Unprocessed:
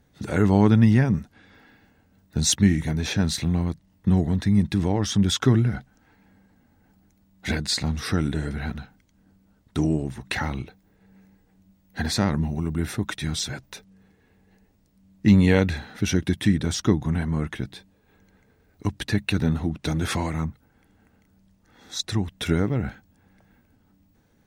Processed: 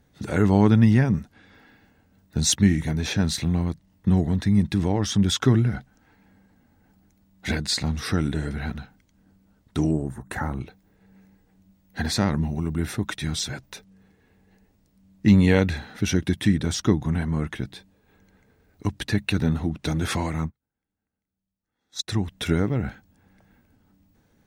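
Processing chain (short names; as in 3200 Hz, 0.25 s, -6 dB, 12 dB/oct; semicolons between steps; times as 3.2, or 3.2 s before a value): 9.91–10.61 band shelf 3500 Hz -14.5 dB; 20.45–22.08 upward expander 2.5:1, over -43 dBFS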